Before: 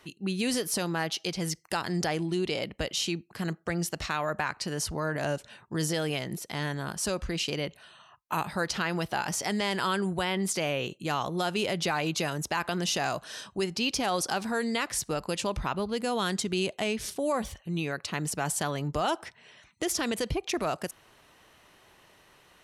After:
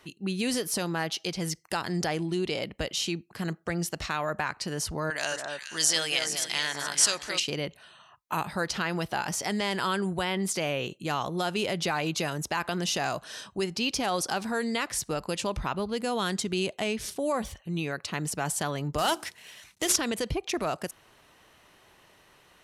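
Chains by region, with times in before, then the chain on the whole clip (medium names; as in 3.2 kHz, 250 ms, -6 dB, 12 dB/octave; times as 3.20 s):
5.10–7.40 s: frequency weighting ITU-R 468 + echo whose repeats swap between lows and highs 213 ms, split 1.6 kHz, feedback 52%, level -3 dB
18.98–19.96 s: CVSD coder 64 kbps + treble shelf 2.3 kHz +10.5 dB + hum notches 60/120/180/240/300/360/420/480 Hz
whole clip: none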